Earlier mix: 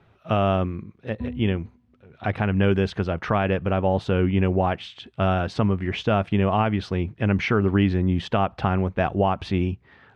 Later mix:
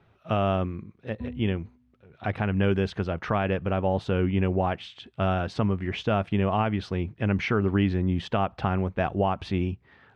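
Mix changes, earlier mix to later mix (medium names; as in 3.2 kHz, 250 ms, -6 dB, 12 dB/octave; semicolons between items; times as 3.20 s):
speech -3.5 dB; reverb: off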